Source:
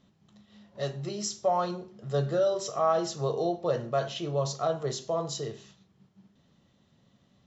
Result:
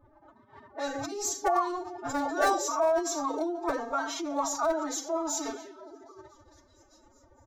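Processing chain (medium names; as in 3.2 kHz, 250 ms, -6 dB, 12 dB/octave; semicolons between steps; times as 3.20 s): in parallel at -1.5 dB: compressor with a negative ratio -39 dBFS, ratio -1; on the sum: level-controlled noise filter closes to 940 Hz, open at -26.5 dBFS; comb 6.6 ms, depth 76%; repeats whose band climbs or falls 229 ms, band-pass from 240 Hz, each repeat 0.7 oct, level -11 dB; on a send at -18 dB: reverberation RT60 0.40 s, pre-delay 6 ms; on the sum: wavefolder -16 dBFS; treble shelf 5.2 kHz +11.5 dB; formant-preserving pitch shift +12 st; FFT filter 110 Hz 0 dB, 170 Hz -23 dB, 340 Hz -4 dB, 1.2 kHz +3 dB, 2 kHz -4 dB, 2.9 kHz -15 dB, 6.5 kHz -7 dB; trim -1.5 dB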